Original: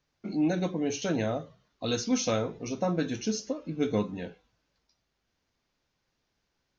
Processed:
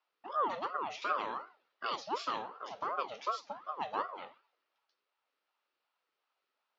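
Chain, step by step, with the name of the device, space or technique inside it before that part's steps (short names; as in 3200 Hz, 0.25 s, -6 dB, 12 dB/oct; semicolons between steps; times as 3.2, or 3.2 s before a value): voice changer toy (ring modulator with a swept carrier 620 Hz, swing 50%, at 2.7 Hz; speaker cabinet 480–4600 Hz, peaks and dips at 690 Hz -3 dB, 1300 Hz +8 dB, 2700 Hz +4 dB); 1.89–3.21 dynamic EQ 1700 Hz, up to -6 dB, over -43 dBFS, Q 1.5; gain -4 dB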